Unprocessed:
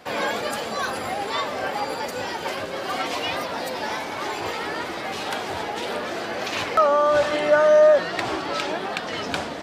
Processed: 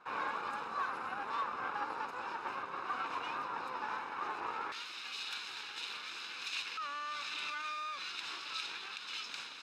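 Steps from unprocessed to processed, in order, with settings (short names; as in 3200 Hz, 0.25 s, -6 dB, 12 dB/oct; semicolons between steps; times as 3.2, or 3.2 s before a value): minimum comb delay 0.78 ms; limiter -18 dBFS, peak gain reduction 9 dB; band-pass 960 Hz, Q 1.3, from 4.72 s 3700 Hz; gain -5 dB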